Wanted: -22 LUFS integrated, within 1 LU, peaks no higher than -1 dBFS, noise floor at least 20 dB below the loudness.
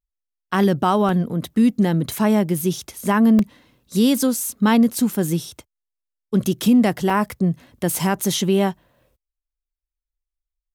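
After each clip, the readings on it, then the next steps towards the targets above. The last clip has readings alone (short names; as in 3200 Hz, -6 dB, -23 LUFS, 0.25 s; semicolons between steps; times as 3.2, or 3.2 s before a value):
dropouts 4; longest dropout 1.8 ms; loudness -19.5 LUFS; peak -7.5 dBFS; loudness target -22.0 LUFS
-> interpolate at 1.09/3.39/5.13/7.1, 1.8 ms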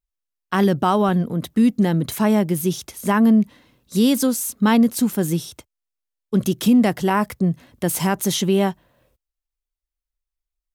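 dropouts 0; loudness -19.5 LUFS; peak -7.5 dBFS; loudness target -22.0 LUFS
-> gain -2.5 dB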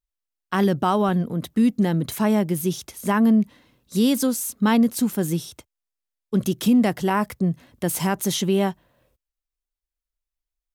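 loudness -22.0 LUFS; peak -10.0 dBFS; noise floor -88 dBFS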